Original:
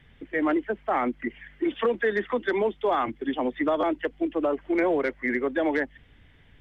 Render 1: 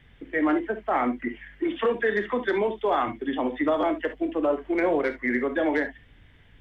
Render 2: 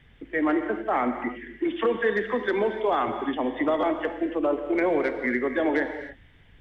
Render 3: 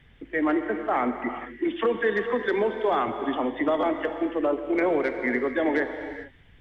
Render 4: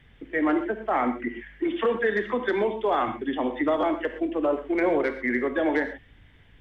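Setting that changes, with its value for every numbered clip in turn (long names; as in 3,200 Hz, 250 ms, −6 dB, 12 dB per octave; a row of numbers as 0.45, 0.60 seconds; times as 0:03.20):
reverb whose tail is shaped and stops, gate: 90, 320, 470, 150 milliseconds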